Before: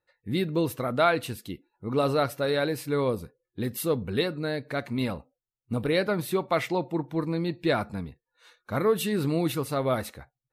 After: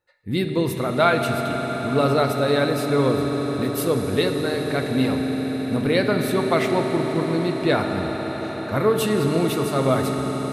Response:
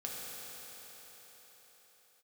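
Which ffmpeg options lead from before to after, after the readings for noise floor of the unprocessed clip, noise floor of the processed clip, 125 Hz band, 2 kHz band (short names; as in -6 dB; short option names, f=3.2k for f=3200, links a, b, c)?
under -85 dBFS, -29 dBFS, +6.5 dB, +6.0 dB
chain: -filter_complex "[0:a]asplit=2[a][b];[1:a]atrim=start_sample=2205,asetrate=22932,aresample=44100[c];[b][c]afir=irnorm=-1:irlink=0,volume=-3.5dB[d];[a][d]amix=inputs=2:normalize=0"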